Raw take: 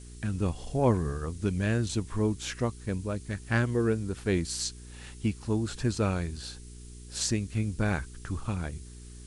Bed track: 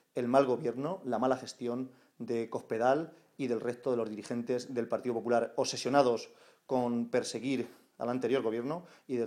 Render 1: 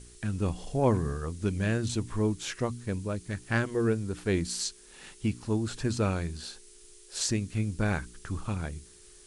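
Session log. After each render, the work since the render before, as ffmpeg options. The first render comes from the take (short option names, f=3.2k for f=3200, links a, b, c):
-af "bandreject=f=60:t=h:w=4,bandreject=f=120:t=h:w=4,bandreject=f=180:t=h:w=4,bandreject=f=240:t=h:w=4,bandreject=f=300:t=h:w=4"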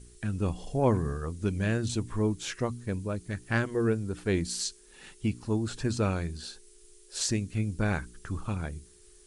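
-af "afftdn=nr=6:nf=-54"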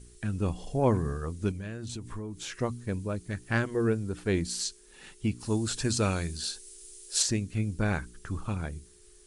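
-filter_complex "[0:a]asettb=1/sr,asplit=3[a][b][c];[a]atrim=end=1.514[d];[b]atrim=start=1.51:end=2.55,asetpts=PTS-STARTPTS,afade=t=in:d=0.004:c=qsin,afade=t=out:st=1.036:d=0.004:c=qsin,acompressor=threshold=-34dB:ratio=6:attack=3.2:release=140:knee=1:detection=peak[e];[c]atrim=start=2.546[f];[d][e]acrossfade=d=0.004:c1=hsin:c2=qsin[g];[g][f]acrossfade=d=0.004:c1=qsin:c2=hsin,asplit=3[h][i][j];[h]afade=t=out:st=5.39:d=0.02[k];[i]highshelf=f=3.2k:g=11.5,afade=t=in:st=5.39:d=0.02,afade=t=out:st=7.21:d=0.02[l];[j]afade=t=in:st=7.21:d=0.02[m];[k][l][m]amix=inputs=3:normalize=0"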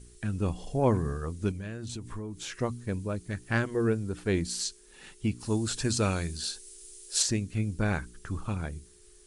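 -af anull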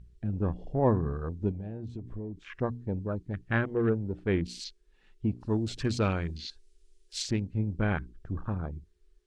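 -af "afwtdn=0.01,lowpass=3.7k"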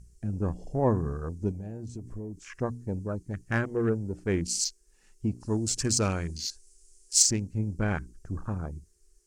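-af "adynamicsmooth=sensitivity=1:basefreq=7.9k,aexciter=amount=15.1:drive=7.6:freq=5.6k"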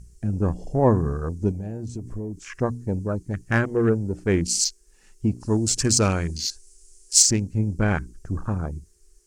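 -af "volume=6.5dB,alimiter=limit=-3dB:level=0:latency=1"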